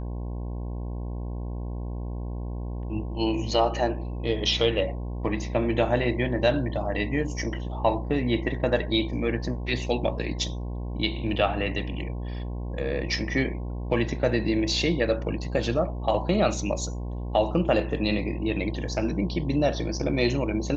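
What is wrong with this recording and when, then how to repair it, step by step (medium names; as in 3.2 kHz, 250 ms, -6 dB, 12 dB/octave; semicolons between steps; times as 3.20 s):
buzz 60 Hz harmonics 18 -32 dBFS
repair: de-hum 60 Hz, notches 18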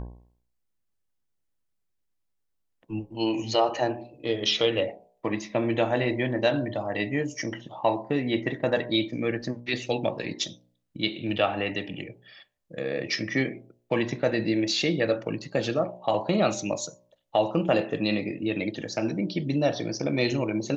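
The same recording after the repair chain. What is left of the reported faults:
nothing left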